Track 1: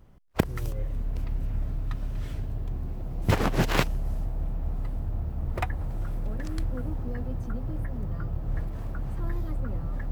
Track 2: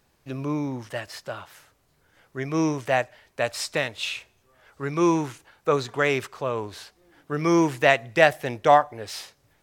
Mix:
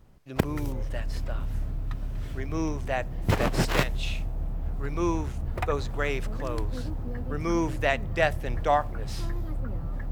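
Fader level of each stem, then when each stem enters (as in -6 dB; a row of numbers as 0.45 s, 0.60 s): -1.0 dB, -7.0 dB; 0.00 s, 0.00 s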